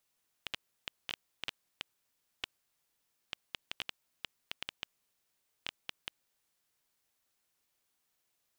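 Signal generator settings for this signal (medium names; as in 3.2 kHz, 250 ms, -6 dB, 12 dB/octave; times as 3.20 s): random clicks 4.7 per s -18.5 dBFS 6.00 s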